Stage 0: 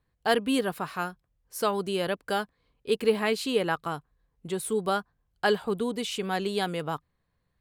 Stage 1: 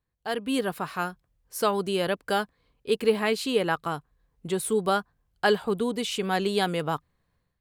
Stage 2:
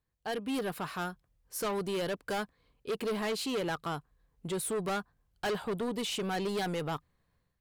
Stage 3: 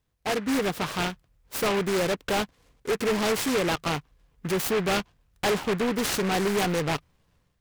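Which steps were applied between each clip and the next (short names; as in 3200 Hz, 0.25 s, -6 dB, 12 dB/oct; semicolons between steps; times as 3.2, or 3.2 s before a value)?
AGC gain up to 12 dB; gain -8 dB
soft clip -27.5 dBFS, distortion -7 dB; gain -1.5 dB
noise-modulated delay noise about 1500 Hz, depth 0.12 ms; gain +8 dB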